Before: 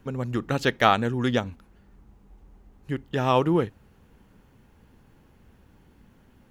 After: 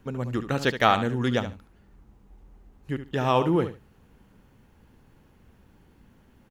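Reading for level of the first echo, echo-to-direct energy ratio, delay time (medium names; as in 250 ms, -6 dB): -11.0 dB, -11.0 dB, 72 ms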